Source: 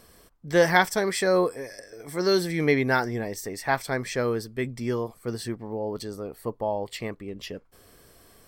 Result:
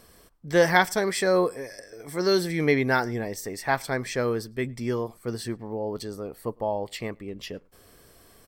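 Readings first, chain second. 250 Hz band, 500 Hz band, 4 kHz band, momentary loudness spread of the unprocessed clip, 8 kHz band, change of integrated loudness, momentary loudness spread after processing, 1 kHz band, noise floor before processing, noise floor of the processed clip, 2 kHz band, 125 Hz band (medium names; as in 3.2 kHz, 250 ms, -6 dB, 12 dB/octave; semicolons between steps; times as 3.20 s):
0.0 dB, 0.0 dB, 0.0 dB, 15 LU, 0.0 dB, 0.0 dB, 15 LU, 0.0 dB, -57 dBFS, -56 dBFS, 0.0 dB, 0.0 dB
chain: echo from a far wall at 18 m, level -29 dB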